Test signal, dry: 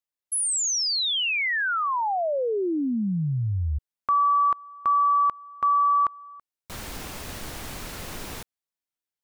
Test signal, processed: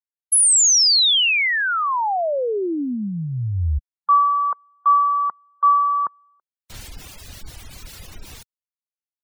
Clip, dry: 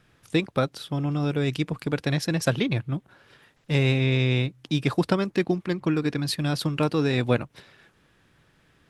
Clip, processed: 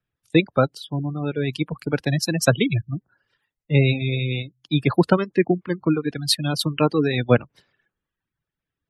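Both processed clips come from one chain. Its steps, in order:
reverb reduction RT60 1.2 s
gate on every frequency bin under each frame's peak −25 dB strong
multiband upward and downward expander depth 70%
level +4.5 dB

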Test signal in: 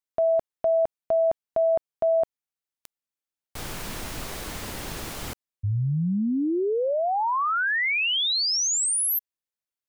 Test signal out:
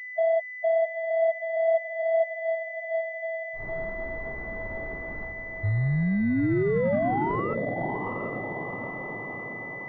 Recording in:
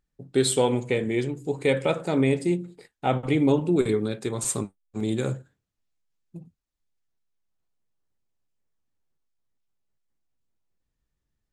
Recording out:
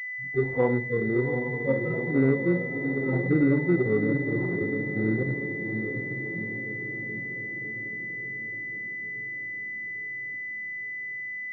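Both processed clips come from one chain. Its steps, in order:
harmonic-percussive split with one part muted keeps harmonic
feedback delay with all-pass diffusion 744 ms, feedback 60%, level −6 dB
switching amplifier with a slow clock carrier 2,000 Hz

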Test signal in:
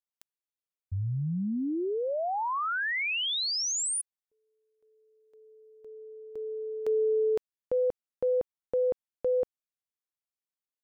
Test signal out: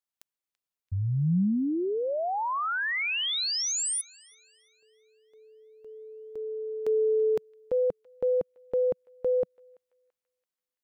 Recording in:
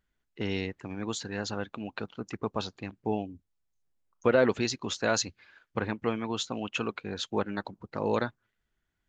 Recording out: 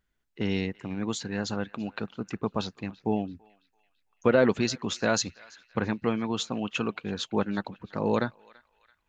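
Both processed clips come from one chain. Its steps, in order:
dynamic equaliser 180 Hz, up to +6 dB, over −47 dBFS, Q 1.6
on a send: feedback echo with a band-pass in the loop 335 ms, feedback 55%, band-pass 2,500 Hz, level −20.5 dB
on the sum: level +1 dB

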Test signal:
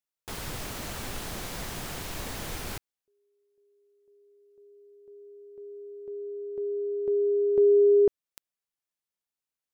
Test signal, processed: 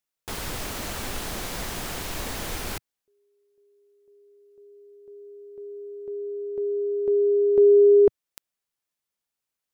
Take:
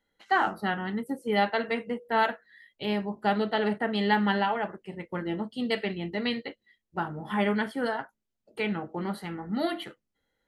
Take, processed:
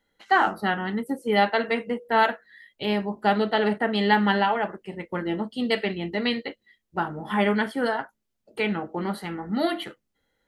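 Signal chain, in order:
dynamic equaliser 130 Hz, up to −5 dB, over −49 dBFS, Q 1.8
level +4.5 dB

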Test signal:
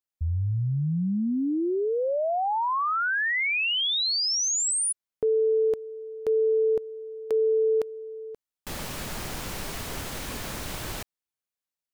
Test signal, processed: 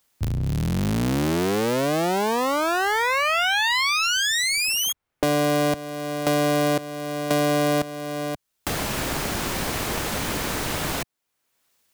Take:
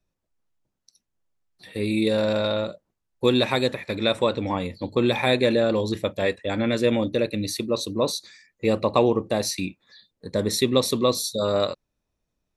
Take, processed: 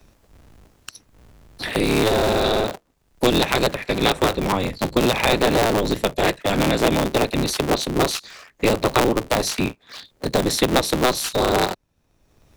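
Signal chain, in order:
sub-harmonics by changed cycles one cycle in 3, inverted
multiband upward and downward compressor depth 70%
level +3 dB

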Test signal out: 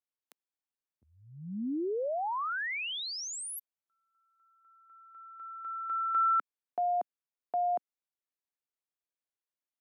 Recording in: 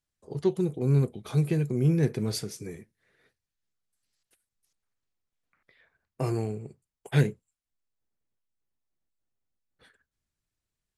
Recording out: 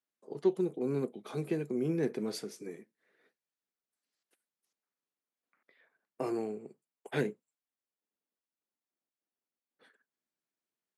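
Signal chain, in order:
high-pass filter 220 Hz 24 dB per octave
high-shelf EQ 2,700 Hz −8 dB
level −2 dB

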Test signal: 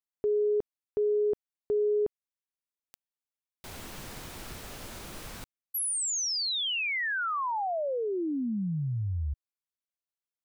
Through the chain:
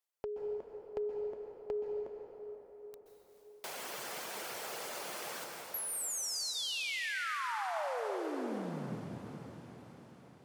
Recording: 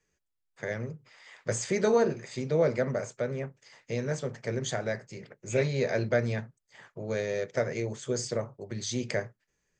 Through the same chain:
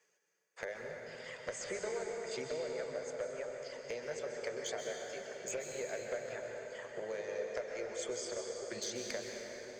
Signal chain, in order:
notch filter 3,800 Hz, Q 19
reverb reduction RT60 1.8 s
high-pass filter 150 Hz 24 dB per octave
low shelf with overshoot 360 Hz −10.5 dB, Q 1.5
downward compressor 8 to 1, threshold −43 dBFS
feedback delay with all-pass diffusion 456 ms, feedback 65%, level −16 dB
asymmetric clip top −38 dBFS
dense smooth reverb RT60 4 s, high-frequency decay 0.6×, pre-delay 115 ms, DRR 0.5 dB
level +4 dB

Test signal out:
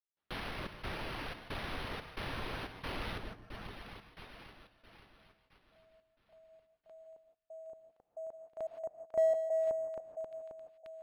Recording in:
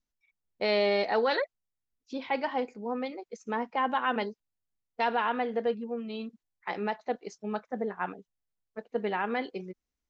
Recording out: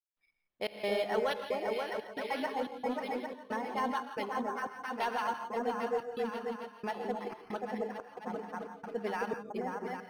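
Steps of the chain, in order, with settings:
high-shelf EQ 3,000 Hz +10 dB
on a send: echo whose low-pass opens from repeat to repeat 267 ms, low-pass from 750 Hz, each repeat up 1 octave, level 0 dB
on the sum: gate pattern ".xxx.xxx" 90 BPM −60 dB
in parallel at −5 dB: soft clipping −23.5 dBFS
on the sum: reverb reduction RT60 1.7 s
reverb whose tail is shaped and stops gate 190 ms rising, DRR 8 dB
linearly interpolated sample-rate reduction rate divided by 6×
level −8.5 dB

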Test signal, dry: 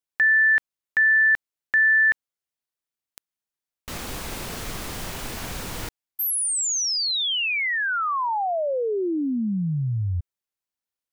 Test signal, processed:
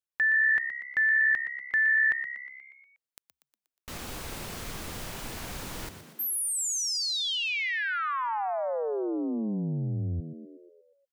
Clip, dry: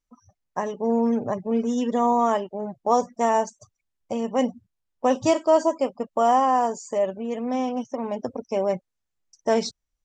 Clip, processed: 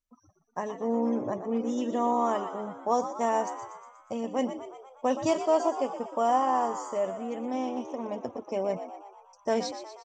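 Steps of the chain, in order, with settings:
echo with shifted repeats 120 ms, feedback 58%, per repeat +67 Hz, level −10.5 dB
level −6 dB

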